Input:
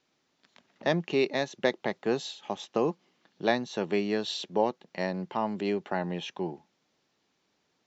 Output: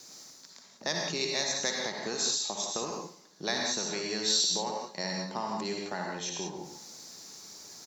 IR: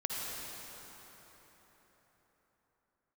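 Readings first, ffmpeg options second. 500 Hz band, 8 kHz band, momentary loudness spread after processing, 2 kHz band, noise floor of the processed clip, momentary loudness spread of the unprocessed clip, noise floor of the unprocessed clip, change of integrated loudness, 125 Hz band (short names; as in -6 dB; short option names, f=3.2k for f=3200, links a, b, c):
-7.5 dB, n/a, 18 LU, -1.0 dB, -56 dBFS, 8 LU, -75 dBFS, -0.5 dB, -6.5 dB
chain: -filter_complex "[0:a]acrossover=split=980[a][b];[a]acompressor=threshold=-34dB:ratio=6[c];[c][b]amix=inputs=2:normalize=0,aemphasis=mode=reproduction:type=cd,areverse,acompressor=mode=upward:threshold=-42dB:ratio=2.5,areverse,aexciter=amount=9.8:drive=8.4:freq=4.6k,highpass=44,aecho=1:1:137|274|411:0.112|0.046|0.0189[d];[1:a]atrim=start_sample=2205,afade=t=out:st=0.25:d=0.01,atrim=end_sample=11466[e];[d][e]afir=irnorm=-1:irlink=0,volume=-1.5dB"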